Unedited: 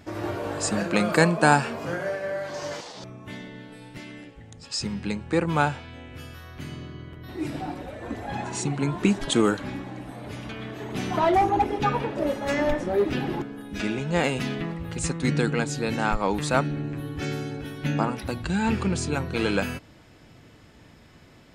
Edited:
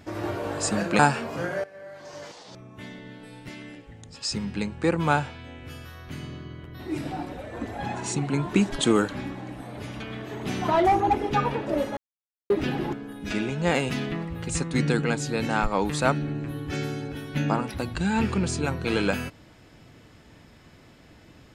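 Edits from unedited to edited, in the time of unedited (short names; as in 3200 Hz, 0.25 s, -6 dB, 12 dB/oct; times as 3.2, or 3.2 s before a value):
0.99–1.48 cut
2.13–3.81 fade in, from -17.5 dB
12.46–12.99 mute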